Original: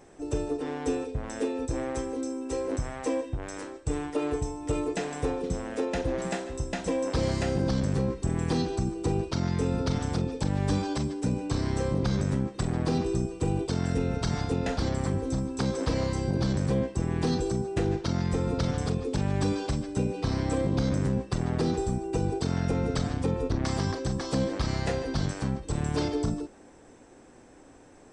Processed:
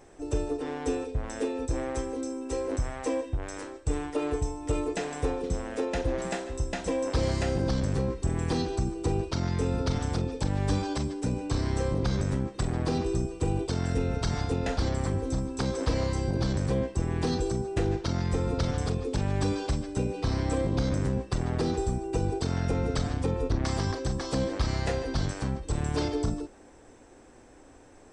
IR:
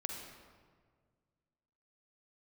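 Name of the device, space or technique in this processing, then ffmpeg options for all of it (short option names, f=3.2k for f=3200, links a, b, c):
low shelf boost with a cut just above: -af "lowshelf=f=110:g=5,equalizer=f=170:t=o:w=1.2:g=-5"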